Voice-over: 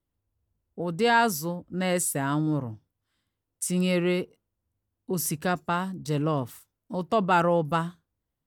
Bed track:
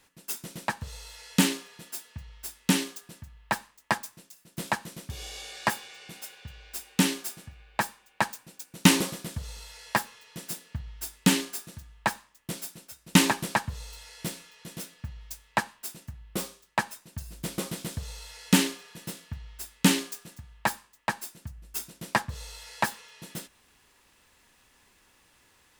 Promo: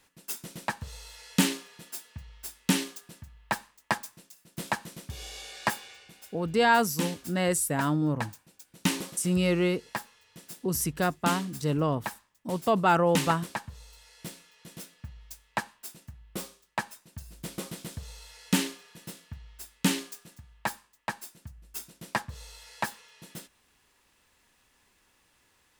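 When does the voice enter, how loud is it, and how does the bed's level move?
5.55 s, -0.5 dB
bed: 5.91 s -1.5 dB
6.12 s -8.5 dB
13.92 s -8.5 dB
14.77 s -4.5 dB

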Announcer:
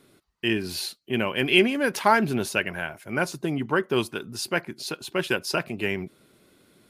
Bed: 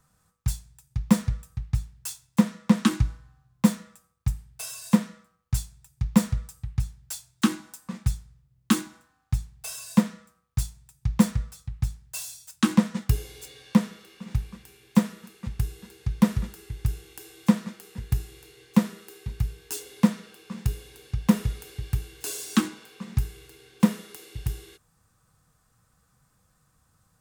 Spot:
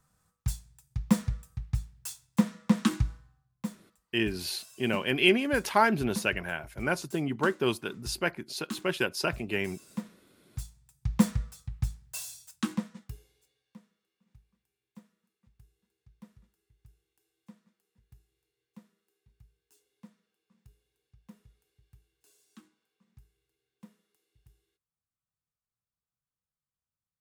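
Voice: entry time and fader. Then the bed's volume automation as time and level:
3.70 s, -3.5 dB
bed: 3.17 s -4.5 dB
3.68 s -16.5 dB
10.25 s -16.5 dB
11.16 s -3.5 dB
12.39 s -3.5 dB
13.64 s -32.5 dB

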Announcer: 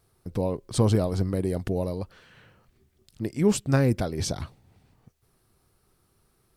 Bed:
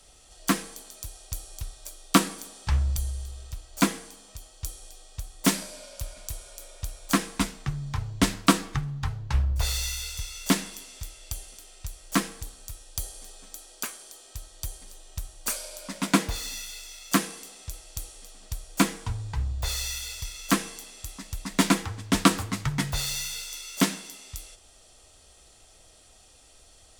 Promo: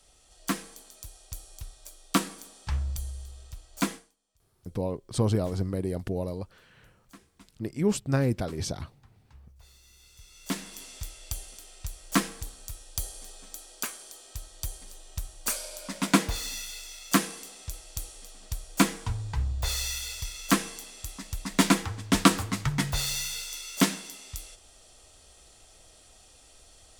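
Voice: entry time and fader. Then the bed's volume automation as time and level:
4.40 s, -3.5 dB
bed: 3.94 s -5.5 dB
4.16 s -29 dB
9.81 s -29 dB
10.84 s 0 dB

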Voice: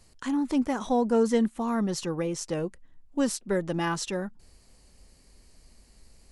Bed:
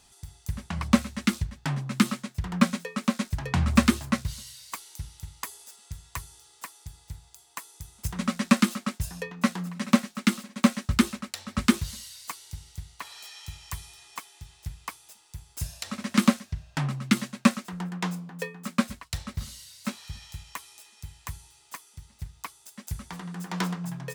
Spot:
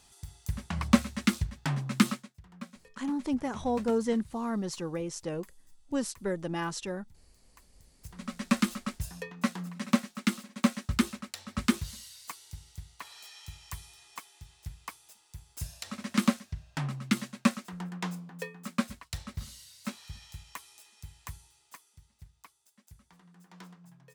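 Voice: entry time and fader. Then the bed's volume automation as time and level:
2.75 s, -5.0 dB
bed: 2.11 s -1.5 dB
2.37 s -22 dB
7.74 s -22 dB
8.59 s -5 dB
21.26 s -5 dB
22.99 s -21 dB

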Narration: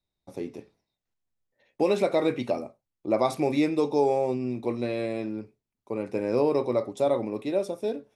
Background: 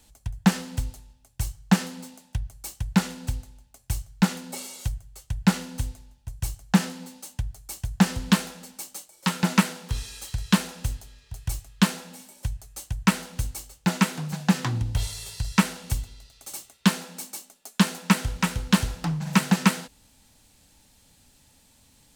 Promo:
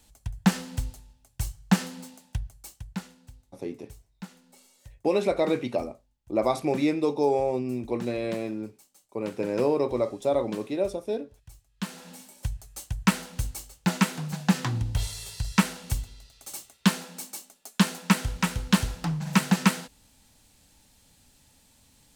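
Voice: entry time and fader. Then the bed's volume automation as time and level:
3.25 s, -0.5 dB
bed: 2.38 s -2 dB
3.31 s -20.5 dB
11.68 s -20.5 dB
12.09 s -1.5 dB

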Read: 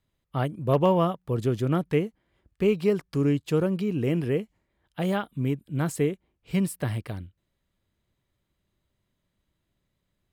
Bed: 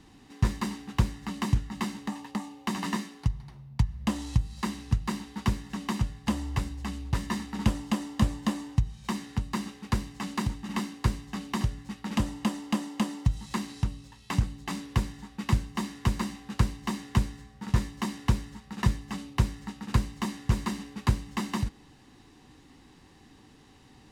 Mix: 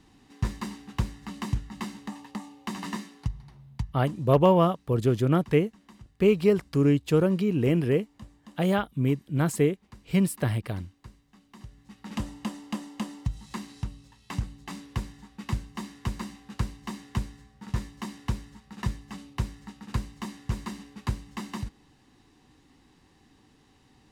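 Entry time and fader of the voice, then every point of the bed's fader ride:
3.60 s, +2.0 dB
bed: 3.70 s -3.5 dB
4.26 s -22 dB
11.48 s -22 dB
12.11 s -5 dB

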